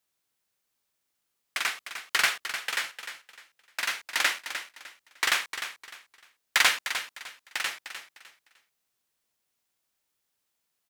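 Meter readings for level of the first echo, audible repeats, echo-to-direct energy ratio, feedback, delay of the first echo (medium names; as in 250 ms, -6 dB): -10.0 dB, 3, -9.5 dB, 27%, 303 ms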